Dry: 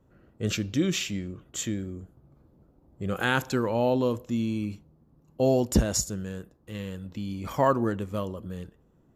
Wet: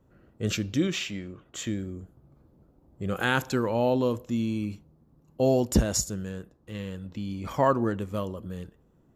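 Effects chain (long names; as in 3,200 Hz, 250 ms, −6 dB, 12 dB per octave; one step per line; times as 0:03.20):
0:00.87–0:01.67: mid-hump overdrive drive 7 dB, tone 2,600 Hz, clips at −16.5 dBFS
0:06.30–0:07.96: high-shelf EQ 10,000 Hz −8 dB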